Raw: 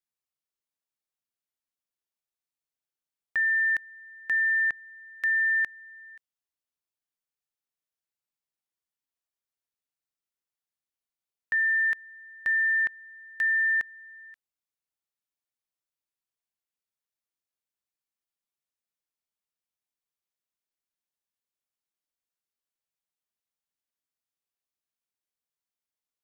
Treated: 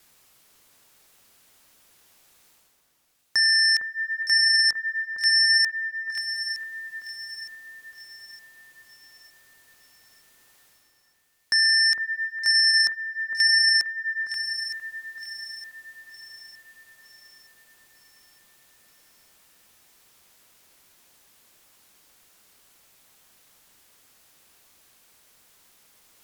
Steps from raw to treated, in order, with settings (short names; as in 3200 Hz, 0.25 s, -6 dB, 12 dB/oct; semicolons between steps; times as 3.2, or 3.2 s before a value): vibrato 0.76 Hz 5.7 cents; sine folder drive 7 dB, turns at -20 dBFS; reverse; upward compressor, threshold -48 dBFS; reverse; echo with dull and thin repeats by turns 0.457 s, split 1900 Hz, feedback 64%, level -7 dB; gain +5 dB